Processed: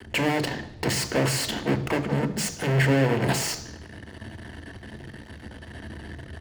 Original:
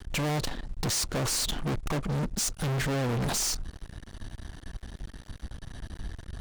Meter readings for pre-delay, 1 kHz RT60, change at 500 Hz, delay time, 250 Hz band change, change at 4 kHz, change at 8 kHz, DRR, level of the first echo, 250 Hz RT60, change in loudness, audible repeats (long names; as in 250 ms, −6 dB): 3 ms, 0.85 s, +8.0 dB, 74 ms, +7.0 dB, +2.0 dB, −1.0 dB, 9.0 dB, −20.5 dB, 0.85 s, +4.5 dB, 1